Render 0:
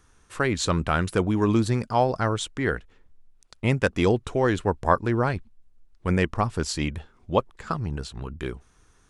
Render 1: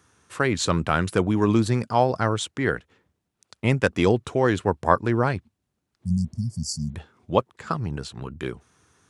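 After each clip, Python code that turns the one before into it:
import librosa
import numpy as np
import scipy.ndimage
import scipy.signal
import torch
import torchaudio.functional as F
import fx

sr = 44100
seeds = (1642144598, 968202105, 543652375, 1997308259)

y = scipy.signal.sosfilt(scipy.signal.butter(4, 84.0, 'highpass', fs=sr, output='sos'), x)
y = fx.spec_repair(y, sr, seeds[0], start_s=6.07, length_s=0.84, low_hz=250.0, high_hz=4400.0, source='before')
y = y * librosa.db_to_amplitude(1.5)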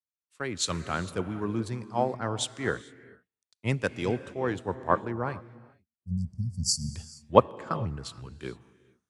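y = fx.rider(x, sr, range_db=4, speed_s=0.5)
y = fx.rev_gated(y, sr, seeds[1], gate_ms=480, shape='rising', drr_db=10.0)
y = fx.band_widen(y, sr, depth_pct=100)
y = y * librosa.db_to_amplitude(-8.0)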